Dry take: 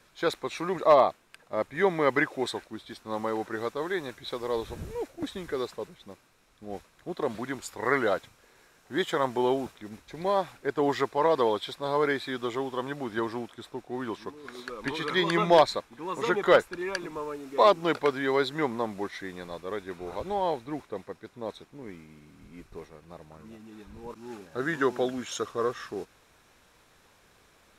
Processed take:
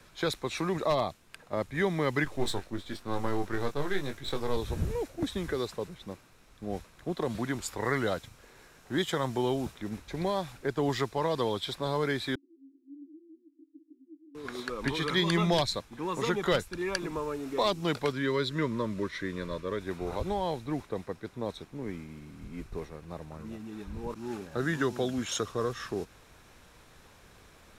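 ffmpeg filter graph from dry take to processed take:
-filter_complex "[0:a]asettb=1/sr,asplit=3[s0][s1][s2];[s0]atrim=end=2.244[s3];[s1]atrim=start=2.24:end=4.57,asetpts=PTS-STARTPTS,afade=t=in:d=0.004:c=qsin,afade=t=out:st=2.326:d=0.004:c=qsin,aeval=exprs='if(lt(val(0),0),0.447*val(0),val(0))':c=same,asplit=2[s4][s5];[s5]adelay=21,volume=0.473[s6];[s4][s6]amix=inputs=2:normalize=0,atrim=end_sample=102753[s7];[s2]atrim=start=4.566[s8];[s3][s7]acrossfade=d=0.004:c1=hsin:c2=qsin[s9];[s9][s8]acrossfade=d=0.004:c1=qsin:c2=hsin,asettb=1/sr,asplit=3[s10][s11][s12];[s10]atrim=end=12.354[s13];[s11]atrim=start=12.35:end=14.35,asetpts=PTS-STARTPTS,afade=t=in:d=0.004:c=qsin,afade=t=out:st=1.996:d=0.004:c=qsin,acompressor=threshold=0.00708:ratio=6:attack=3.2:release=140:knee=1:detection=peak,asuperpass=centerf=300:order=8:qfactor=5.5[s14];[s12]atrim=start=14.346[s15];[s13][s14]acrossfade=d=0.004:c1=hsin:c2=qsin[s16];[s16][s15]acrossfade=d=0.004:c1=qsin:c2=hsin,asettb=1/sr,asplit=3[s17][s18][s19];[s17]atrim=end=18.124[s20];[s18]atrim=start=18.12:end=19.81,asetpts=PTS-STARTPTS,afade=t=in:d=0.004:c=qsin,afade=t=out:st=1.686:d=0.004:c=qsin,asuperstop=centerf=770:order=12:qfactor=3.1,highshelf=f=7900:g=-9[s21];[s19]atrim=start=19.806[s22];[s20][s21]acrossfade=d=0.004:c1=hsin:c2=qsin[s23];[s23][s22]acrossfade=d=0.004:c1=qsin:c2=hsin,lowshelf=f=190:g=7.5,acrossover=split=190|3000[s24][s25][s26];[s25]acompressor=threshold=0.0178:ratio=2.5[s27];[s24][s27][s26]amix=inputs=3:normalize=0,volume=1.41"

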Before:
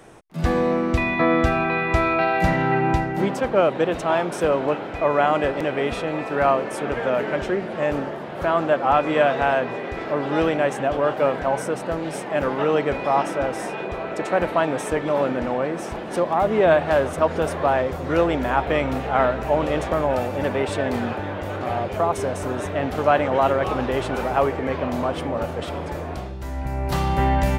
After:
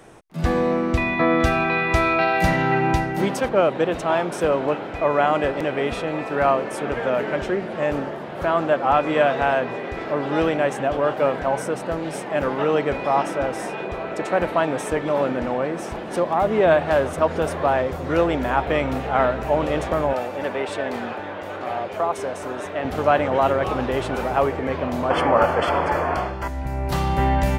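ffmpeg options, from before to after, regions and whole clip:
-filter_complex "[0:a]asettb=1/sr,asplit=3[s0][s1][s2];[s0]atrim=end=1.404[s3];[s1]atrim=start=1.4:end=3.49,asetpts=PTS-STARTPTS,afade=t=in:d=0.004:c=qsin,afade=t=out:st=2.086:d=0.004:c=qsin,highshelf=f=3300:g=8,bandreject=f=7400:w=18[s4];[s2]atrim=start=3.486[s5];[s3][s4]acrossfade=d=0.004:c1=hsin:c2=qsin[s6];[s6][s5]acrossfade=d=0.004:c1=qsin:c2=hsin,asettb=1/sr,asplit=3[s7][s8][s9];[s7]atrim=end=20.134[s10];[s8]atrim=start=20.13:end=22.85,asetpts=PTS-STARTPTS,afade=t=in:d=0.004:c=qsin,afade=t=out:st=2.716:d=0.004:c=qsin,highpass=f=410:p=1,highshelf=f=6100:g=-5.5[s11];[s9]atrim=start=22.846[s12];[s10][s11]acrossfade=d=0.004:c1=hsin:c2=qsin[s13];[s13][s12]acrossfade=d=0.004:c1=qsin:c2=hsin,asettb=1/sr,asplit=3[s14][s15][s16];[s14]atrim=end=25.104[s17];[s15]atrim=start=25.1:end=26.48,asetpts=PTS-STARTPTS,afade=t=in:d=0.004:c=qsin,afade=t=out:st=1.376:d=0.004:c=qsin,asuperstop=centerf=3800:order=20:qfactor=6.8,equalizer=f=1200:w=0.49:g=14.5[s18];[s16]atrim=start=26.476[s19];[s17][s18]acrossfade=d=0.004:c1=hsin:c2=qsin[s20];[s20][s19]acrossfade=d=0.004:c1=qsin:c2=hsin"

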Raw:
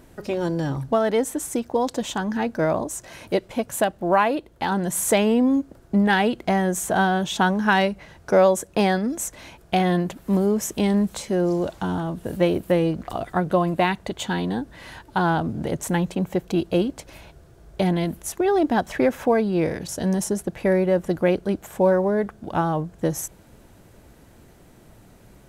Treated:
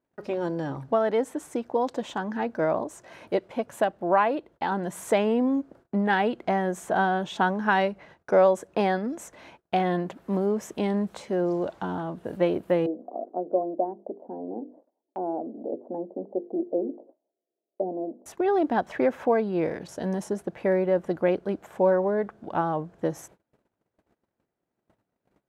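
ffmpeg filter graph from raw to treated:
-filter_complex "[0:a]asettb=1/sr,asplit=3[s0][s1][s2];[s0]atrim=end=12.864[s3];[s1]atrim=start=12.86:end=18.26,asetpts=PTS-STARTPTS,afade=t=in:d=0.004:c=qsin,afade=t=out:st=5.396:d=0.004:c=qsin,asuperpass=centerf=410:order=8:qfactor=0.85,bandreject=f=50:t=h:w=6,bandreject=f=100:t=h:w=6,bandreject=f=150:t=h:w=6,bandreject=f=200:t=h:w=6,bandreject=f=250:t=h:w=6,bandreject=f=300:t=h:w=6,bandreject=f=350:t=h:w=6,bandreject=f=400:t=h:w=6,bandreject=f=450:t=h:w=6,bandreject=f=500:t=h:w=6[s4];[s2]atrim=start=18.256[s5];[s3][s4]acrossfade=d=0.004:c1=hsin:c2=qsin[s6];[s6][s5]acrossfade=d=0.004:c1=qsin:c2=hsin,lowpass=f=1300:p=1,agate=range=0.0447:threshold=0.00501:ratio=16:detection=peak,highpass=f=390:p=1"

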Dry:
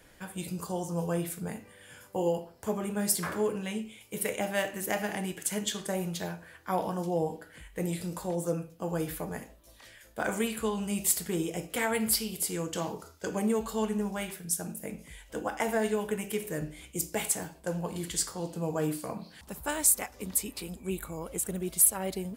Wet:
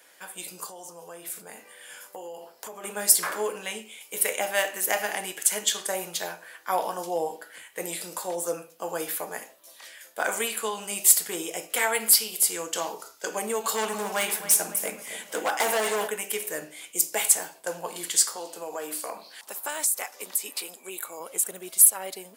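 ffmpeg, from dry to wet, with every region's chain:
-filter_complex "[0:a]asettb=1/sr,asplit=3[s0][s1][s2];[s0]atrim=end=0.694[s3];[s1]atrim=start=0.69:end=2.84,asetpts=PTS-STARTPTS,afade=t=in:d=0.004:c=qsin,afade=t=out:st=2.146:d=0.004:c=qsin,acompressor=threshold=0.0126:ratio=6:attack=3.2:release=140:knee=1:detection=peak,aeval=exprs='(mod(25.1*val(0)+1,2)-1)/25.1':c=same[s4];[s2]atrim=start=2.836[s5];[s3][s4]acrossfade=d=0.004:c1=hsin:c2=qsin[s6];[s6][s5]acrossfade=d=0.004:c1=qsin:c2=hsin,asettb=1/sr,asplit=3[s7][s8][s9];[s7]atrim=end=13.644[s10];[s8]atrim=start=13.64:end=16.08,asetpts=PTS-STARTPTS,afade=t=in:d=0.004:c=qsin,afade=t=out:st=2.436:d=0.004:c=qsin,acontrast=40,volume=17.8,asoftclip=hard,volume=0.0562,asplit=2[s11][s12];[s12]adelay=271,lowpass=f=3800:p=1,volume=0.266,asplit=2[s13][s14];[s14]adelay=271,lowpass=f=3800:p=1,volume=0.52,asplit=2[s15][s16];[s16]adelay=271,lowpass=f=3800:p=1,volume=0.52,asplit=2[s17][s18];[s18]adelay=271,lowpass=f=3800:p=1,volume=0.52,asplit=2[s19][s20];[s20]adelay=271,lowpass=f=3800:p=1,volume=0.52,asplit=2[s21][s22];[s22]adelay=271,lowpass=f=3800:p=1,volume=0.52[s23];[s11][s13][s15][s17][s19][s21][s23]amix=inputs=7:normalize=0,atrim=end_sample=107604[s24];[s9]atrim=start=16.076[s25];[s10][s24]acrossfade=d=0.004:c1=hsin:c2=qsin[s26];[s26][s25]acrossfade=d=0.004:c1=qsin:c2=hsin,asettb=1/sr,asplit=3[s27][s28][s29];[s27]atrim=end=18.364[s30];[s28]atrim=start=18.36:end=21.2,asetpts=PTS-STARTPTS,afade=t=in:d=0.004:c=qsin,afade=t=out:st=2.836:d=0.004:c=qsin,highpass=270,acompressor=threshold=0.0251:ratio=4:attack=3.2:release=140:knee=1:detection=peak[s31];[s29]atrim=start=21.196[s32];[s30][s31]acrossfade=d=0.004:c1=hsin:c2=qsin[s33];[s33][s32]acrossfade=d=0.004:c1=qsin:c2=hsin,highpass=560,highshelf=f=4900:g=5,dynaudnorm=f=110:g=21:m=1.5,volume=1.33"

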